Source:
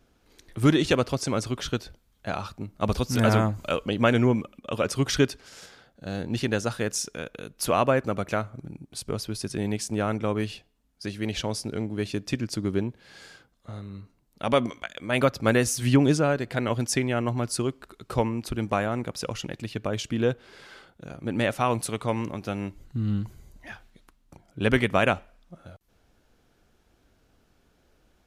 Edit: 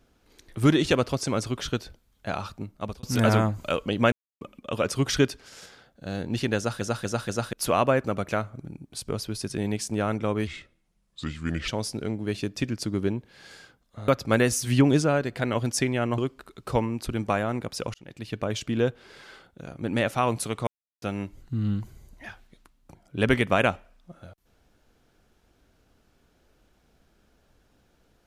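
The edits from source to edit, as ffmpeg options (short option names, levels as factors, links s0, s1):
-filter_complex "[0:a]asplit=15[s0][s1][s2][s3][s4][s5][s6][s7][s8][s9][s10][s11][s12][s13][s14];[s0]atrim=end=3.03,asetpts=PTS-STARTPTS,afade=t=out:st=2.62:d=0.41[s15];[s1]atrim=start=3.03:end=4.12,asetpts=PTS-STARTPTS,afade=t=in:d=0.004:c=hsin,afade=t=out:st=1.086:d=0.004:c=hsin[s16];[s2]atrim=start=4.12:end=4.41,asetpts=PTS-STARTPTS,volume=0[s17];[s3]atrim=start=4.41:end=6.812,asetpts=PTS-STARTPTS,afade=t=in:d=0.004:c=hsin[s18];[s4]atrim=start=6.568:end=6.812[s19];[s5]atrim=start=6.568:end=6.812[s20];[s6]atrim=start=6.568:end=6.812[s21];[s7]atrim=start=7.528:end=10.474[s22];[s8]atrim=start=10.47:end=11.39,asetpts=PTS-STARTPTS,asetrate=33516,aresample=44100,atrim=end_sample=53384,asetpts=PTS-STARTPTS[s23];[s9]atrim=start=11.386:end=13.792[s24];[s10]atrim=start=15.228:end=17.332[s25];[s11]atrim=start=17.608:end=19.37,asetpts=PTS-STARTPTS,afade=t=out:st=1.758:d=0.004:c=hsin[s26];[s12]atrim=start=19.37:end=22.1,asetpts=PTS-STARTPTS,afade=t=in:d=0.42,afade=t=out:st=2.726:d=0.004:c=hsin[s27];[s13]atrim=start=22.1:end=22.45,asetpts=PTS-STARTPTS,volume=0[s28];[s14]atrim=start=22.45,asetpts=PTS-STARTPTS,afade=t=in:d=0.004:c=hsin[s29];[s15][s16][s17][s18]concat=n=4:v=0:a=1[s30];[s30][s19]acrossfade=d=0.004:c1=hsin:c2=hsin[s31];[s31][s20]acrossfade=d=0.004:c1=hsin:c2=hsin[s32];[s32][s21]acrossfade=d=0.004:c1=hsin:c2=hsin[s33];[s33][s22]acrossfade=d=0.004:c1=hsin:c2=hsin[s34];[s34][s23]acrossfade=d=0.004:c1=hsin:c2=hsin[s35];[s35][s24]acrossfade=d=0.004:c1=hsin:c2=hsin[s36];[s36][s25]acrossfade=d=0.004:c1=hsin:c2=hsin[s37];[s26][s27][s28][s29]concat=n=4:v=0:a=1[s38];[s37][s38]acrossfade=d=0.004:c1=hsin:c2=hsin"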